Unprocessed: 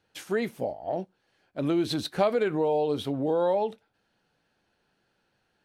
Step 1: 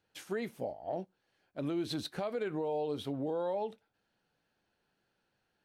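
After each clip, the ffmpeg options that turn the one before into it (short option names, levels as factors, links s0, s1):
-af "alimiter=limit=0.1:level=0:latency=1:release=190,volume=0.473"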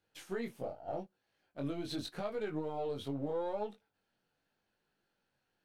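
-af "aeval=exprs='if(lt(val(0),0),0.708*val(0),val(0))':c=same,flanger=delay=19:depth=3.2:speed=0.83,volume=1.19"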